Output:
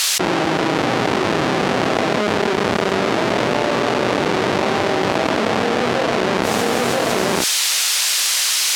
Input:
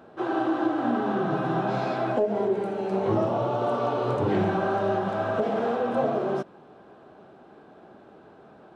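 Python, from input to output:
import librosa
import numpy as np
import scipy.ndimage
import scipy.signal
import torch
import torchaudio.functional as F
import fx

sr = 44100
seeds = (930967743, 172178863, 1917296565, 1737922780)

p1 = fx.octave_divider(x, sr, octaves=1, level_db=0.0)
p2 = fx.rider(p1, sr, range_db=10, speed_s=0.5)
p3 = p1 + F.gain(torch.from_numpy(p2), 0.5).numpy()
p4 = fx.schmitt(p3, sr, flips_db=-17.0)
p5 = fx.dmg_noise_colour(p4, sr, seeds[0], colour='violet', level_db=-40.0)
p6 = fx.bandpass_edges(p5, sr, low_hz=320.0, high_hz=4700.0)
p7 = fx.doubler(p6, sr, ms=32.0, db=-11.5)
p8 = p7 + 10.0 ** (-20.0 / 20.0) * np.pad(p7, (int(983 * sr / 1000.0), 0))[:len(p7)]
p9 = fx.env_flatten(p8, sr, amount_pct=100)
y = F.gain(torch.from_numpy(p9), 3.0).numpy()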